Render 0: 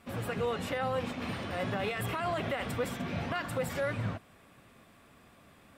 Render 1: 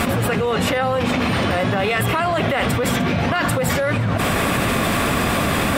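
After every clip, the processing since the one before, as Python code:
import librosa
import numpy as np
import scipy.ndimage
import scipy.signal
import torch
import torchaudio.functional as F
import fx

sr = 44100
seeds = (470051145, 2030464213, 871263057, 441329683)

y = fx.env_flatten(x, sr, amount_pct=100)
y = y * librosa.db_to_amplitude(9.0)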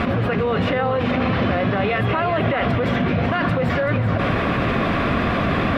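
y = fx.air_absorb(x, sr, metres=290.0)
y = fx.notch(y, sr, hz=870.0, q=12.0)
y = y + 10.0 ** (-9.0 / 20.0) * np.pad(y, (int(382 * sr / 1000.0), 0))[:len(y)]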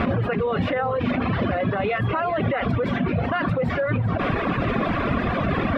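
y = fx.dereverb_blind(x, sr, rt60_s=1.8)
y = fx.high_shelf(y, sr, hz=3700.0, db=-9.0)
y = fx.rider(y, sr, range_db=10, speed_s=0.5)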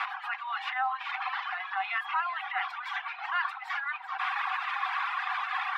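y = scipy.signal.sosfilt(scipy.signal.cheby1(10, 1.0, 750.0, 'highpass', fs=sr, output='sos'), x)
y = y * librosa.db_to_amplitude(-2.0)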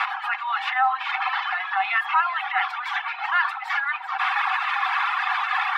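y = x + 0.31 * np.pad(x, (int(2.3 * sr / 1000.0), 0))[:len(x)]
y = fx.echo_tape(y, sr, ms=78, feedback_pct=51, wet_db=-17.5, lp_hz=1300.0, drive_db=17.0, wow_cents=25)
y = y * librosa.db_to_amplitude(8.0)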